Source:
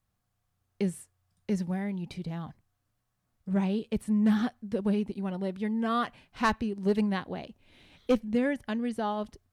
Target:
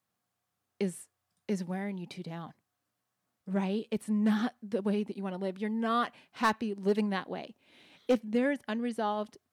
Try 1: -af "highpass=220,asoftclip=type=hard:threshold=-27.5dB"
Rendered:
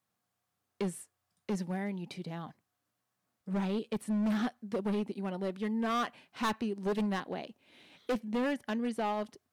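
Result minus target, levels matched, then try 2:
hard clip: distortion +15 dB
-af "highpass=220,asoftclip=type=hard:threshold=-18dB"

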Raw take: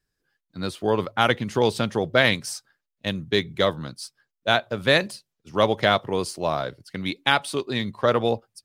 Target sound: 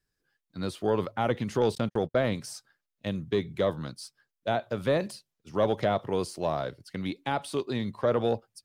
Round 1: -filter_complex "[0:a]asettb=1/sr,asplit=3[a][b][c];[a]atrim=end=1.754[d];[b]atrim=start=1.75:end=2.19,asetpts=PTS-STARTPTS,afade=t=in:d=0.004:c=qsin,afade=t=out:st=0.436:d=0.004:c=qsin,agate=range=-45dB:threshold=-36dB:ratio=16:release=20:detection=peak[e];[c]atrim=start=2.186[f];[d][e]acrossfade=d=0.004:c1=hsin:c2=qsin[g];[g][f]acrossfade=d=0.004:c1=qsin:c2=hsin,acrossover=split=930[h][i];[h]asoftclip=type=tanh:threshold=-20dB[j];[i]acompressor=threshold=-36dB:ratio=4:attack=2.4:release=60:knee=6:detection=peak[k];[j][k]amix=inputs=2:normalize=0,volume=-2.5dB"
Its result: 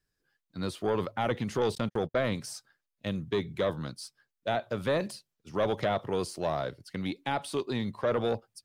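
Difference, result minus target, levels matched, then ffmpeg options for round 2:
soft clip: distortion +9 dB
-filter_complex "[0:a]asettb=1/sr,asplit=3[a][b][c];[a]atrim=end=1.754[d];[b]atrim=start=1.75:end=2.19,asetpts=PTS-STARTPTS,afade=t=in:d=0.004:c=qsin,afade=t=out:st=0.436:d=0.004:c=qsin,agate=range=-45dB:threshold=-36dB:ratio=16:release=20:detection=peak[e];[c]atrim=start=2.186[f];[d][e]acrossfade=d=0.004:c1=hsin:c2=qsin[g];[g][f]acrossfade=d=0.004:c1=qsin:c2=hsin,acrossover=split=930[h][i];[h]asoftclip=type=tanh:threshold=-12.5dB[j];[i]acompressor=threshold=-36dB:ratio=4:attack=2.4:release=60:knee=6:detection=peak[k];[j][k]amix=inputs=2:normalize=0,volume=-2.5dB"

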